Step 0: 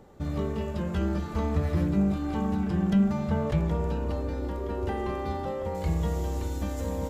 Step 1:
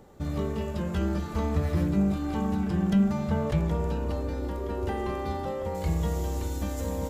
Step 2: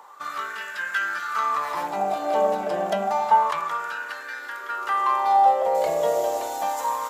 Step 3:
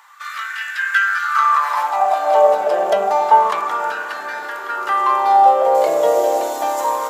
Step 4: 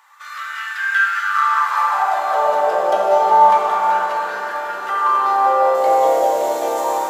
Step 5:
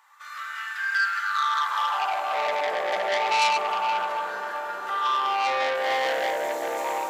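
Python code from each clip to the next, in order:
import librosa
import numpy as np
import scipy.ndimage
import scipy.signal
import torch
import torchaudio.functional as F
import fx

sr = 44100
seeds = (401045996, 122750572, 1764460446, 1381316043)

y1 = fx.high_shelf(x, sr, hz=5800.0, db=5.5)
y2 = fx.filter_lfo_highpass(y1, sr, shape='sine', hz=0.29, low_hz=600.0, high_hz=1600.0, q=7.6)
y2 = F.gain(torch.from_numpy(y2), 6.0).numpy()
y3 = fx.echo_diffused(y2, sr, ms=521, feedback_pct=56, wet_db=-14.5)
y3 = fx.filter_sweep_highpass(y3, sr, from_hz=1800.0, to_hz=310.0, start_s=0.75, end_s=3.48, q=1.7)
y3 = F.gain(torch.from_numpy(y3), 5.0).numpy()
y4 = fx.rev_plate(y3, sr, seeds[0], rt60_s=4.7, hf_ratio=0.8, predelay_ms=0, drr_db=-3.5)
y4 = F.gain(torch.from_numpy(y4), -5.5).numpy()
y5 = fx.transformer_sat(y4, sr, knee_hz=3600.0)
y5 = F.gain(torch.from_numpy(y5), -6.5).numpy()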